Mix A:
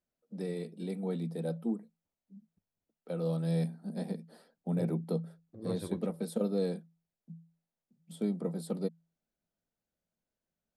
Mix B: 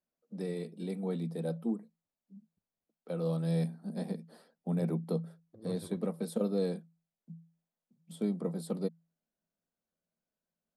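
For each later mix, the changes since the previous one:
first voice: remove notch filter 1,100 Hz, Q 10
second voice −7.5 dB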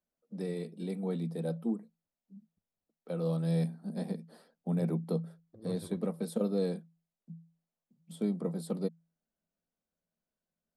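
master: add low-shelf EQ 70 Hz +6.5 dB

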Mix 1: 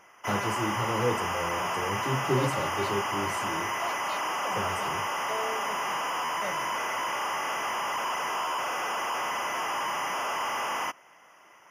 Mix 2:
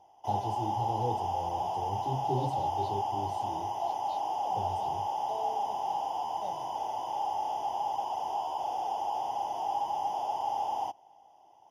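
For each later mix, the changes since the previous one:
master: add drawn EQ curve 100 Hz 0 dB, 200 Hz −10 dB, 330 Hz −6 dB, 560 Hz −9 dB, 820 Hz +9 dB, 1,200 Hz −29 dB, 2,200 Hz −30 dB, 3,500 Hz −4 dB, 7,100 Hz −17 dB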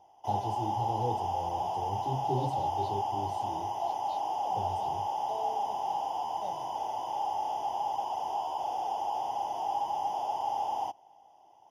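nothing changed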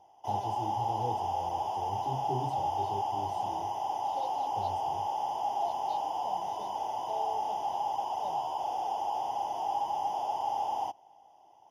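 first voice −3.5 dB
second voice: entry +1.80 s

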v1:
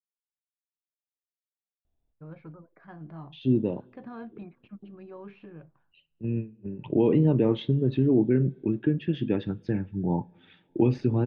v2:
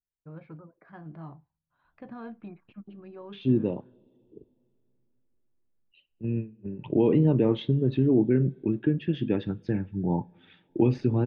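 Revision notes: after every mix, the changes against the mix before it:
first voice: entry −1.95 s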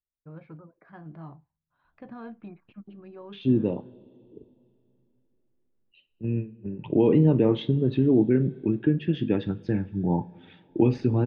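second voice: send +9.0 dB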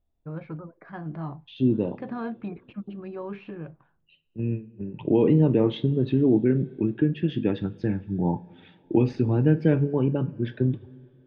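first voice +8.5 dB
second voice: entry −1.85 s

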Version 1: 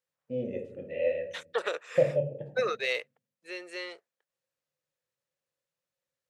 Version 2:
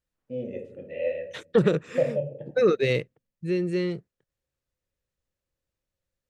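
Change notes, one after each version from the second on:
second voice: remove high-pass filter 620 Hz 24 dB per octave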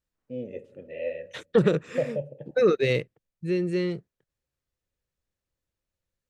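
first voice: send −10.5 dB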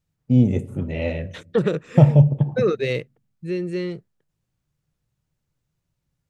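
first voice: remove formant filter e

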